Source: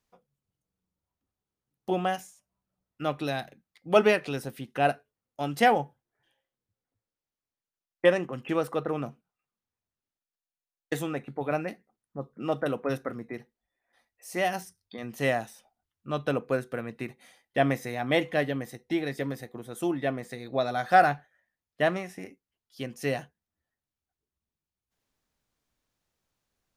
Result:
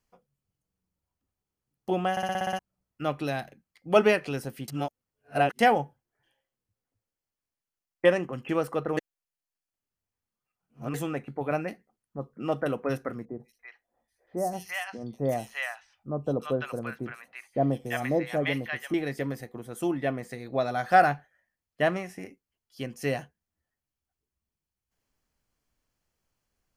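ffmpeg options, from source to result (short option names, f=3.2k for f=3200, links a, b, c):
-filter_complex "[0:a]asettb=1/sr,asplit=3[a][b][c];[a]atrim=end=13.254[d];[b]atrim=start=13.25:end=18.94,asetpts=PTS-STARTPTS,afade=t=in:d=0.004:c=qsin,afade=t=out:st=5.686:d=0.004:c=qsin,acrossover=split=940|4400[e][f][g];[g]adelay=150[h];[f]adelay=340[i];[e][i][h]amix=inputs=3:normalize=0,atrim=end_sample=250929[j];[c]atrim=start=18.936[k];[d][j]acrossfade=d=0.004:c1=hsin:c2=qsin[l];[l][k]acrossfade=d=0.004:c1=qsin:c2=hsin,asplit=13[m][n][o][p][q][r][s][t][u][v][w][x][y];[m]atrim=end=2.172[z];[n]atrim=start=2.108:end=2.172[aa];[o]atrim=start=2.108:end=2.172[ab];[p]atrim=start=2.108:end=2.172[ac];[q]atrim=start=2.108:end=2.172[ad];[r]atrim=start=2.108:end=2.172[ae];[s]atrim=start=2.108:end=2.172[af];[t]atrim=start=2.108:end=2.172[ag];[u]atrim=start=2.588:end=4.682[ah];[v]atrim=start=4.678:end=5.592,asetpts=PTS-STARTPTS,areverse[ai];[w]atrim=start=5.588:end=8.972[aj];[x]atrim=start=8.968:end=10.942,asetpts=PTS-STARTPTS,areverse[ak];[y]atrim=start=10.938[al];[z][aa]acrossfade=d=0.004:c1=hsin:c2=hsin[am];[am][ab]acrossfade=d=0.004:c1=hsin:c2=hsin[an];[an][ac]acrossfade=d=0.004:c1=hsin:c2=hsin[ao];[ao][ad]acrossfade=d=0.004:c1=hsin:c2=hsin[ap];[ap][ae]acrossfade=d=0.004:c1=hsin:c2=hsin[aq];[aq][af]acrossfade=d=0.004:c1=hsin:c2=hsin[ar];[ar][ag]acrossfade=d=0.004:c1=hsin:c2=hsin[as];[as][ah]acrossfade=d=0.004:c1=hsin:c2=hsin[at];[at][ai]acrossfade=d=0.004:c1=hsin:c2=hsin[au];[au][aj]acrossfade=d=0.004:c1=hsin:c2=hsin[av];[av][ak]acrossfade=d=0.004:c1=hsin:c2=hsin[aw];[aw][al]acrossfade=d=0.004:c1=hsin:c2=hsin,lowshelf=f=70:g=6.5,bandreject=f=3.7k:w=8.1"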